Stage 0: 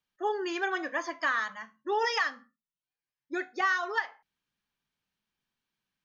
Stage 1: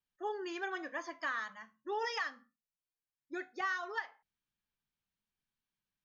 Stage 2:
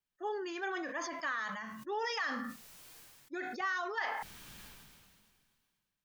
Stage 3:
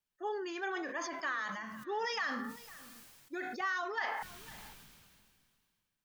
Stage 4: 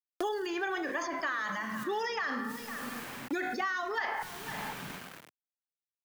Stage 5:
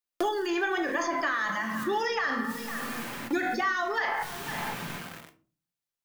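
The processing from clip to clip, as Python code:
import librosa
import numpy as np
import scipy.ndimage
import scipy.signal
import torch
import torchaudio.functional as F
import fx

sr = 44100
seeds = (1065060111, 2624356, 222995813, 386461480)

y1 = fx.low_shelf(x, sr, hz=100.0, db=10.0)
y1 = y1 * librosa.db_to_amplitude(-8.5)
y2 = fx.sustainer(y1, sr, db_per_s=28.0)
y3 = y2 + 10.0 ** (-19.0 / 20.0) * np.pad(y2, (int(503 * sr / 1000.0), 0))[:len(y2)]
y4 = fx.room_shoebox(y3, sr, seeds[0], volume_m3=1000.0, walls='mixed', distance_m=0.35)
y4 = np.where(np.abs(y4) >= 10.0 ** (-57.5 / 20.0), y4, 0.0)
y4 = fx.band_squash(y4, sr, depth_pct=100)
y4 = y4 * librosa.db_to_amplitude(3.0)
y5 = fx.room_shoebox(y4, sr, seeds[1], volume_m3=220.0, walls='furnished', distance_m=0.82)
y5 = y5 * librosa.db_to_amplitude(4.0)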